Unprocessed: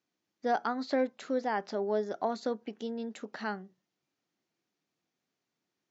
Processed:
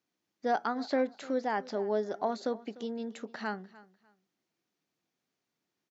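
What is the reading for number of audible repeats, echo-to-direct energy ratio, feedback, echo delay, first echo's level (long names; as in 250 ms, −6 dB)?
2, −20.0 dB, 24%, 298 ms, −20.0 dB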